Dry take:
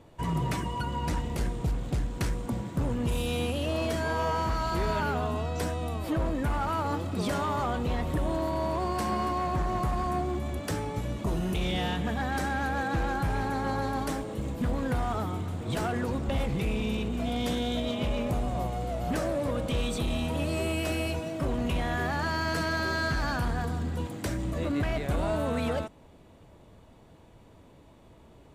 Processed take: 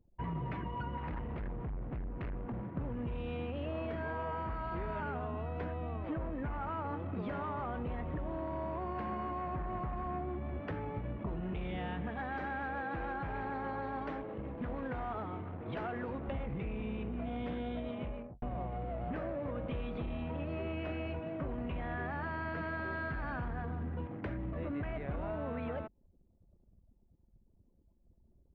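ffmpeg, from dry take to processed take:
ffmpeg -i in.wav -filter_complex "[0:a]asettb=1/sr,asplit=3[link_01][link_02][link_03];[link_01]atrim=end=0.974[link_04];[link_02]atrim=start=0.97:end=2.69,asetpts=PTS-STARTPTS,afade=type=in:duration=0.004:curve=qsin,afade=type=out:start_time=1.716:duration=0.004:curve=qsin,volume=31.5dB,asoftclip=hard,volume=-31.5dB[link_05];[link_03]atrim=start=2.686[link_06];[link_04][link_05]acrossfade=duration=0.004:curve1=hsin:curve2=qsin[link_07];[link_07][link_06]acrossfade=duration=0.004:curve1=qsin:curve2=hsin,asettb=1/sr,asplit=3[link_08][link_09][link_10];[link_08]atrim=end=12.104[link_11];[link_09]atrim=start=12.1:end=16.32,asetpts=PTS-STARTPTS,afade=type=in:duration=0.004:curve=qsin,afade=type=out:start_time=4.216:duration=0.004:curve=qsin,bass=frequency=250:gain=-6,treble=frequency=4000:gain=7[link_12];[link_10]atrim=start=16.316[link_13];[link_11][link_12]acrossfade=duration=0.004:curve1=hsin:curve2=qsin[link_14];[link_14][link_13]acrossfade=duration=0.004:curve1=qsin:curve2=hsin,asplit=2[link_15][link_16];[link_15]atrim=end=18.42,asetpts=PTS-STARTPTS,afade=type=out:start_time=17.79:duration=0.63[link_17];[link_16]atrim=start=18.42,asetpts=PTS-STARTPTS,afade=type=in:duration=0.004:curve=hsin[link_18];[link_17][link_18]concat=n=2:v=0:a=1,lowpass=frequency=2500:width=0.5412,lowpass=frequency=2500:width=1.3066,anlmdn=0.0631,acompressor=threshold=-30dB:ratio=6,volume=-4.5dB" out.wav

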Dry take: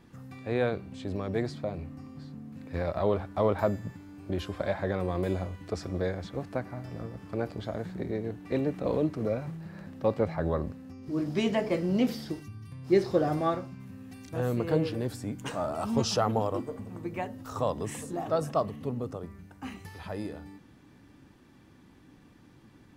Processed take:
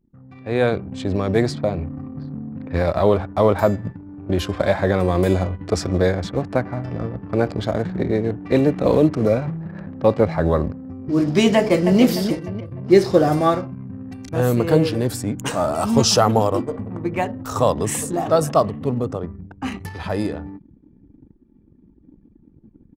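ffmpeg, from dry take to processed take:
ffmpeg -i in.wav -filter_complex "[0:a]asplit=2[link_01][link_02];[link_02]afade=type=in:start_time=11.56:duration=0.01,afade=type=out:start_time=12:duration=0.01,aecho=0:1:300|600|900|1200|1500:0.446684|0.201008|0.0904534|0.040704|0.0183168[link_03];[link_01][link_03]amix=inputs=2:normalize=0,anlmdn=0.0158,dynaudnorm=framelen=160:gausssize=7:maxgain=13dB,adynamicequalizer=threshold=0.00631:dfrequency=5300:dqfactor=0.7:tfrequency=5300:tqfactor=0.7:attack=5:release=100:ratio=0.375:range=3.5:mode=boostabove:tftype=highshelf" out.wav

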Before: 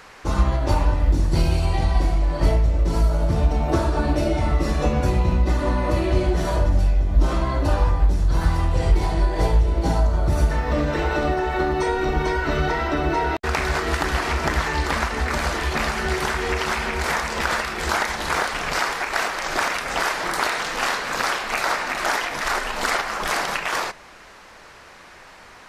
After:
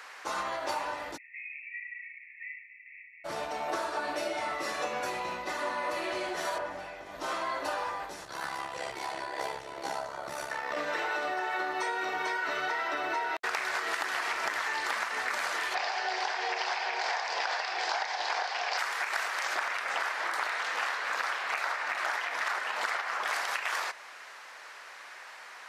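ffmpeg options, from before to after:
ffmpeg -i in.wav -filter_complex "[0:a]asplit=3[link_01][link_02][link_03];[link_01]afade=type=out:start_time=1.16:duration=0.02[link_04];[link_02]asuperpass=centerf=2200:order=20:qfactor=2.7,afade=type=in:start_time=1.16:duration=0.02,afade=type=out:start_time=3.24:duration=0.02[link_05];[link_03]afade=type=in:start_time=3.24:duration=0.02[link_06];[link_04][link_05][link_06]amix=inputs=3:normalize=0,asettb=1/sr,asplit=3[link_07][link_08][link_09];[link_07]atrim=end=6.584[link_10];[link_08]atrim=start=6.58:end=7.06,asetpts=PTS-STARTPTS,afade=type=in:duration=0.004:curve=qsin,afade=type=out:start_time=0.476:duration=0.004:curve=qsin,acrossover=split=3100[link_11][link_12];[link_12]acompressor=threshold=-58dB:ratio=4:attack=1:release=60[link_13];[link_11][link_13]amix=inputs=2:normalize=0[link_14];[link_09]atrim=start=7.056[link_15];[link_10][link_14]acrossfade=duration=0.004:curve1=hsin:curve2=qsin[link_16];[link_16][link_15]acrossfade=duration=0.004:curve1=qsin:curve2=hsin,asettb=1/sr,asplit=3[link_17][link_18][link_19];[link_17]atrim=end=8.254[link_20];[link_18]atrim=start=8.25:end=10.77,asetpts=PTS-STARTPTS,afade=type=in:duration=0.004:curve=qsin,afade=type=out:start_time=2.516:duration=0.004:curve=qsin,tremolo=f=68:d=0.71[link_21];[link_19]atrim=start=10.766[link_22];[link_20][link_21]acrossfade=duration=0.004:curve1=hsin:curve2=qsin[link_23];[link_23][link_22]acrossfade=duration=0.004:curve1=qsin:curve2=hsin,asplit=3[link_24][link_25][link_26];[link_24]afade=type=out:start_time=15.74:duration=0.02[link_27];[link_25]highpass=frequency=320:width=0.5412,highpass=frequency=320:width=1.3066,equalizer=frequency=750:width_type=q:width=4:gain=10,equalizer=frequency=1300:width_type=q:width=4:gain=-7,equalizer=frequency=2000:width_type=q:width=4:gain=-3,equalizer=frequency=4900:width_type=q:width=4:gain=6,lowpass=frequency=5900:width=0.5412,lowpass=frequency=5900:width=1.3066,afade=type=in:start_time=15.74:duration=0.02,afade=type=out:start_time=18.77:duration=0.02[link_28];[link_26]afade=type=in:start_time=18.77:duration=0.02[link_29];[link_27][link_28][link_29]amix=inputs=3:normalize=0,asettb=1/sr,asplit=3[link_30][link_31][link_32];[link_30]atrim=end=19.554[link_33];[link_31]atrim=start=19.55:end=23.33,asetpts=PTS-STARTPTS,afade=type=in:duration=0.004:curve=qsin,afade=type=out:start_time=3.776:duration=0.004:curve=qsin,highshelf=frequency=4900:gain=-9.5[link_34];[link_32]atrim=start=23.326[link_35];[link_33][link_34]acrossfade=duration=0.004:curve1=hsin:curve2=qsin[link_36];[link_36][link_35]acrossfade=duration=0.004:curve1=qsin:curve2=hsin,highpass=690,equalizer=frequency=1800:width_type=o:width=0.77:gain=3,acompressor=threshold=-26dB:ratio=6,volume=-2.5dB" out.wav

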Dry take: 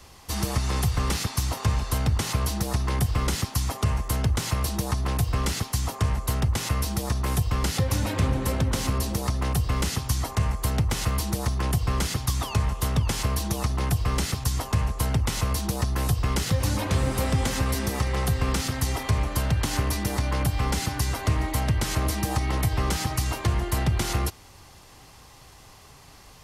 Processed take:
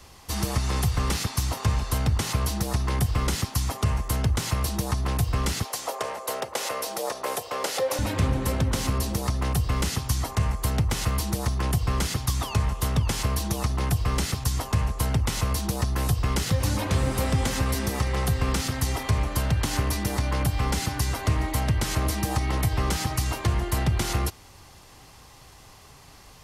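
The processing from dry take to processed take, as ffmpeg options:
ffmpeg -i in.wav -filter_complex "[0:a]asettb=1/sr,asplit=3[link_01][link_02][link_03];[link_01]atrim=end=5.654[link_04];[link_02]atrim=start=5.65:end=7.99,asetpts=PTS-STARTPTS,afade=type=in:duration=0.004:curve=qsin,afade=type=out:start_time=2.336:duration=0.004:curve=qsin,highpass=frequency=530:width_type=q:width=2.8[link_05];[link_03]atrim=start=7.986[link_06];[link_04][link_05]acrossfade=duration=0.004:curve1=hsin:curve2=qsin[link_07];[link_07][link_06]acrossfade=duration=0.004:curve1=qsin:curve2=hsin" out.wav

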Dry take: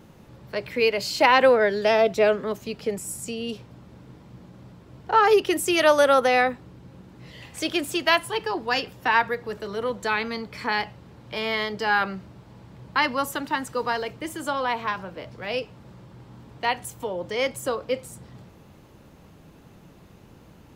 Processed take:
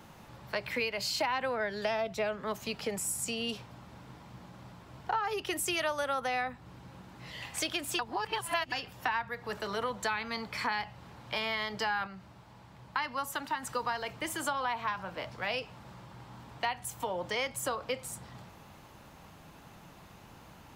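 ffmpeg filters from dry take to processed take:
ffmpeg -i in.wav -filter_complex "[0:a]asplit=5[link_01][link_02][link_03][link_04][link_05];[link_01]atrim=end=7.992[link_06];[link_02]atrim=start=7.988:end=8.722,asetpts=PTS-STARTPTS,areverse[link_07];[link_03]atrim=start=8.718:end=12.072[link_08];[link_04]atrim=start=12.068:end=13.632,asetpts=PTS-STARTPTS,volume=-4.5dB[link_09];[link_05]atrim=start=13.628[link_10];[link_06][link_07]acrossfade=duration=0.004:curve1=hsin:curve2=hsin[link_11];[link_11][link_08]acrossfade=duration=0.004:curve1=hsin:curve2=hsin[link_12];[link_12][link_09]acrossfade=duration=0.004:curve1=hsin:curve2=hsin[link_13];[link_13][link_10]acrossfade=duration=0.004:curve1=hsin:curve2=hsin,lowshelf=frequency=600:width_type=q:width=1.5:gain=-6.5,acrossover=split=170[link_14][link_15];[link_15]acompressor=threshold=-32dB:ratio=8[link_16];[link_14][link_16]amix=inputs=2:normalize=0,volume=2dB" out.wav

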